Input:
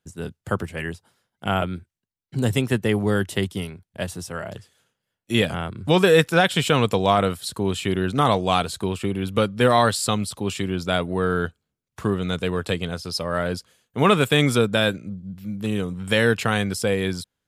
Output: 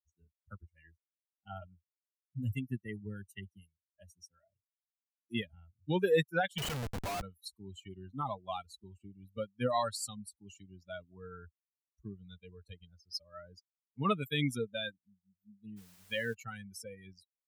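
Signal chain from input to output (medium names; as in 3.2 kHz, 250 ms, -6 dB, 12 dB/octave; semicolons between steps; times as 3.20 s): expander on every frequency bin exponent 3; 6.58–7.22 s: Schmitt trigger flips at -38.5 dBFS; 15.76–16.33 s: added noise white -54 dBFS; trim -8.5 dB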